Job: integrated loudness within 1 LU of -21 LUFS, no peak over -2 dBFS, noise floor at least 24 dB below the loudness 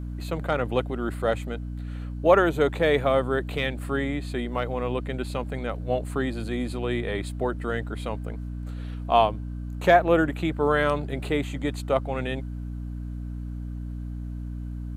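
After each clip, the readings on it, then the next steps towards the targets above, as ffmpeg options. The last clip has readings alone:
hum 60 Hz; harmonics up to 300 Hz; hum level -31 dBFS; loudness -26.5 LUFS; peak -5.5 dBFS; loudness target -21.0 LUFS
-> -af "bandreject=f=60:t=h:w=6,bandreject=f=120:t=h:w=6,bandreject=f=180:t=h:w=6,bandreject=f=240:t=h:w=6,bandreject=f=300:t=h:w=6"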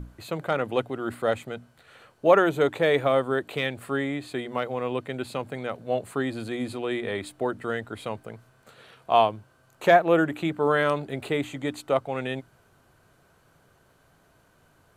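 hum none; loudness -26.0 LUFS; peak -6.0 dBFS; loudness target -21.0 LUFS
-> -af "volume=5dB,alimiter=limit=-2dB:level=0:latency=1"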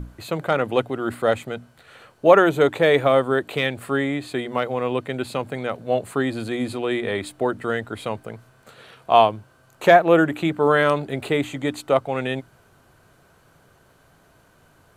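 loudness -21.5 LUFS; peak -2.0 dBFS; noise floor -57 dBFS

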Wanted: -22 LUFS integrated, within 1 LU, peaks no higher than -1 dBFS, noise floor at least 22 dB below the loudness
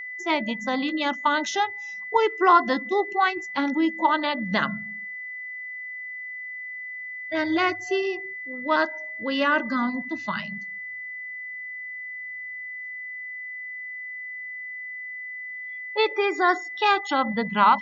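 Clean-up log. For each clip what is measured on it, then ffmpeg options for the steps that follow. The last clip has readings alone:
steady tone 2000 Hz; tone level -33 dBFS; loudness -26.0 LUFS; peak -6.0 dBFS; loudness target -22.0 LUFS
-> -af "bandreject=f=2k:w=30"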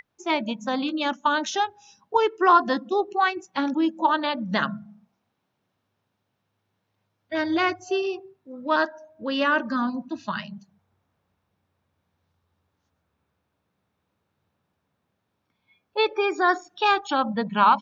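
steady tone none; loudness -24.5 LUFS; peak -6.0 dBFS; loudness target -22.0 LUFS
-> -af "volume=2.5dB"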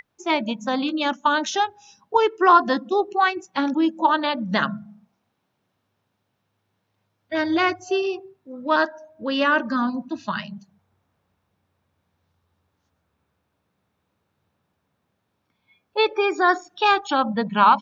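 loudness -22.0 LUFS; peak -3.5 dBFS; noise floor -75 dBFS

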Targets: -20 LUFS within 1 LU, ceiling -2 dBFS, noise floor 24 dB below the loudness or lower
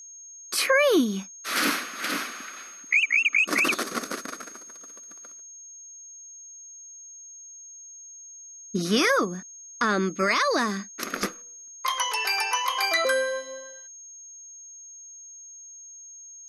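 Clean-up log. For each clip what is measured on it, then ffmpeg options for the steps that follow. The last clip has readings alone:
steady tone 6500 Hz; tone level -42 dBFS; loudness -24.5 LUFS; peak -12.5 dBFS; loudness target -20.0 LUFS
-> -af "bandreject=f=6.5k:w=30"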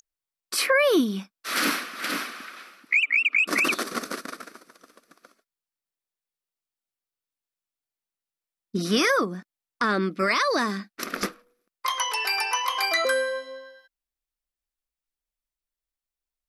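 steady tone none; loudness -24.5 LUFS; peak -12.5 dBFS; loudness target -20.0 LUFS
-> -af "volume=4.5dB"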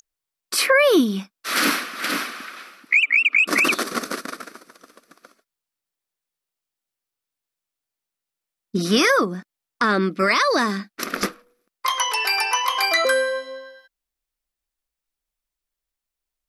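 loudness -20.0 LUFS; peak -8.0 dBFS; noise floor -86 dBFS

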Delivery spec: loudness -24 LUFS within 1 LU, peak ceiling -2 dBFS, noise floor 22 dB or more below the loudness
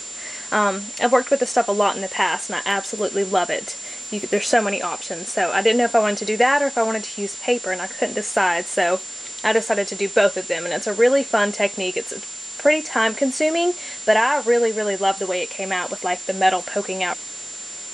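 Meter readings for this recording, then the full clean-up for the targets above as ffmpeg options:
steady tone 7200 Hz; tone level -33 dBFS; noise floor -35 dBFS; noise floor target -43 dBFS; loudness -21.0 LUFS; peak -4.5 dBFS; loudness target -24.0 LUFS
-> -af "bandreject=f=7.2k:w=30"
-af "afftdn=nr=8:nf=-35"
-af "volume=-3dB"

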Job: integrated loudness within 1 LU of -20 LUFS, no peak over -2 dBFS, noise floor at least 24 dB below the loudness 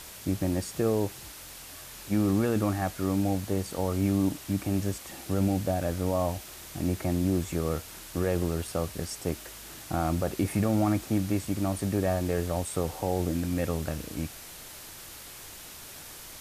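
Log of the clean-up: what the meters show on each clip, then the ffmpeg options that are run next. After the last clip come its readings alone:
noise floor -45 dBFS; noise floor target -54 dBFS; loudness -29.5 LUFS; peak -15.5 dBFS; loudness target -20.0 LUFS
-> -af "afftdn=nr=9:nf=-45"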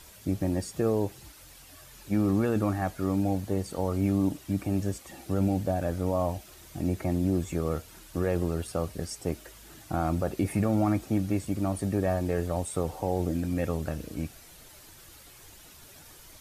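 noise floor -51 dBFS; noise floor target -54 dBFS
-> -af "afftdn=nr=6:nf=-51"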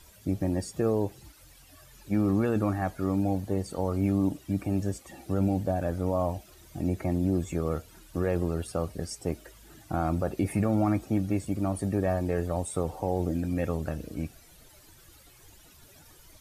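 noise floor -55 dBFS; loudness -29.5 LUFS; peak -15.5 dBFS; loudness target -20.0 LUFS
-> -af "volume=9.5dB"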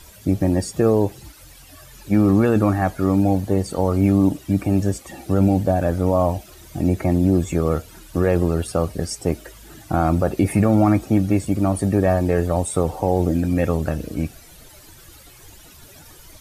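loudness -20.0 LUFS; peak -6.0 dBFS; noise floor -46 dBFS

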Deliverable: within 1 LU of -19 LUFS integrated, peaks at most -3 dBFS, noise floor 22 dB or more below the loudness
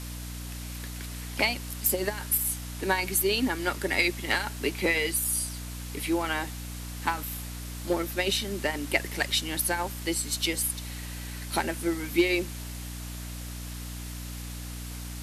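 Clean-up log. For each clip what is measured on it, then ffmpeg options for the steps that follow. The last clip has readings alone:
hum 60 Hz; harmonics up to 300 Hz; hum level -36 dBFS; noise floor -38 dBFS; noise floor target -51 dBFS; loudness -29.0 LUFS; peak -10.5 dBFS; loudness target -19.0 LUFS
-> -af "bandreject=f=60:t=h:w=4,bandreject=f=120:t=h:w=4,bandreject=f=180:t=h:w=4,bandreject=f=240:t=h:w=4,bandreject=f=300:t=h:w=4"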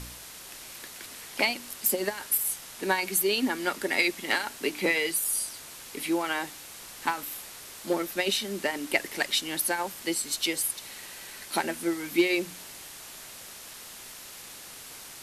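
hum none; noise floor -45 dBFS; noise floor target -50 dBFS
-> -af "afftdn=nr=6:nf=-45"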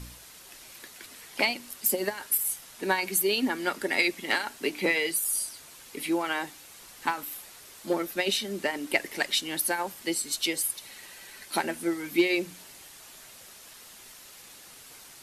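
noise floor -50 dBFS; loudness -28.0 LUFS; peak -10.5 dBFS; loudness target -19.0 LUFS
-> -af "volume=9dB,alimiter=limit=-3dB:level=0:latency=1"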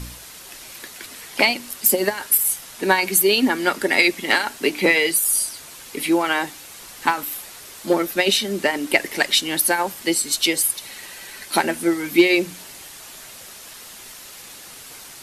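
loudness -19.0 LUFS; peak -3.0 dBFS; noise floor -41 dBFS

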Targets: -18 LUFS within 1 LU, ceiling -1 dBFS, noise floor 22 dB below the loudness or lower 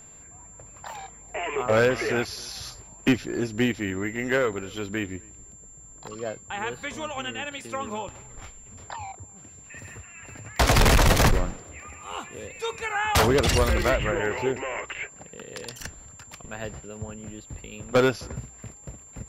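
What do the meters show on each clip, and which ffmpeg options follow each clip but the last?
steady tone 7300 Hz; tone level -46 dBFS; loudness -25.5 LUFS; peak -11.0 dBFS; loudness target -18.0 LUFS
-> -af "bandreject=f=7.3k:w=30"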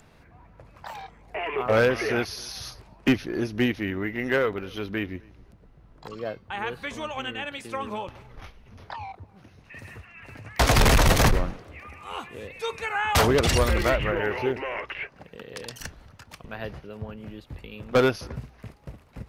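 steady tone none; loudness -25.5 LUFS; peak -11.0 dBFS; loudness target -18.0 LUFS
-> -af "volume=7.5dB"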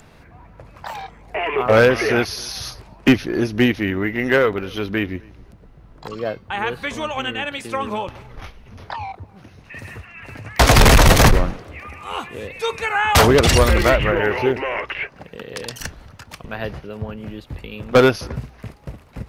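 loudness -18.0 LUFS; peak -3.5 dBFS; noise floor -47 dBFS

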